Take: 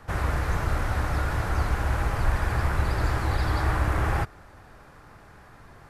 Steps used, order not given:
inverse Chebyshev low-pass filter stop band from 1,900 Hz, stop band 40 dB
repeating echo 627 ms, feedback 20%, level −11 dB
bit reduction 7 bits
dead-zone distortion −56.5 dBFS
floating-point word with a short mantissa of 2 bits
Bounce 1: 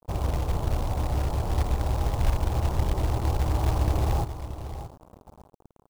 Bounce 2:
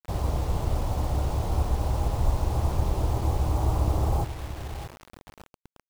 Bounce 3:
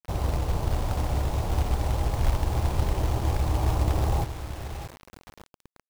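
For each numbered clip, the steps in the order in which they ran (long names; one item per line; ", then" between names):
repeating echo, then dead-zone distortion, then bit reduction, then inverse Chebyshev low-pass filter, then floating-point word with a short mantissa
repeating echo, then floating-point word with a short mantissa, then dead-zone distortion, then inverse Chebyshev low-pass filter, then bit reduction
inverse Chebyshev low-pass filter, then floating-point word with a short mantissa, then repeating echo, then dead-zone distortion, then bit reduction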